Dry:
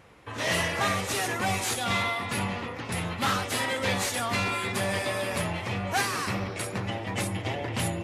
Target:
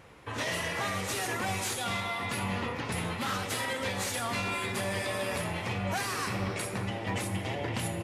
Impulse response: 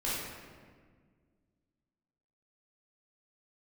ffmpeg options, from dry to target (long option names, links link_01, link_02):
-filter_complex "[0:a]alimiter=limit=-23.5dB:level=0:latency=1:release=223,asplit=2[link_01][link_02];[link_02]adelay=240,highpass=300,lowpass=3400,asoftclip=type=hard:threshold=-32dB,volume=-14dB[link_03];[link_01][link_03]amix=inputs=2:normalize=0,asplit=2[link_04][link_05];[1:a]atrim=start_sample=2205,asetrate=40131,aresample=44100,highshelf=frequency=6100:gain=10.5[link_06];[link_05][link_06]afir=irnorm=-1:irlink=0,volume=-18.5dB[link_07];[link_04][link_07]amix=inputs=2:normalize=0"